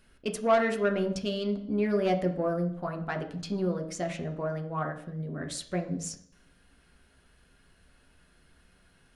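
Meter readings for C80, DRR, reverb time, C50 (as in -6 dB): 13.5 dB, 2.5 dB, 0.55 s, 10.5 dB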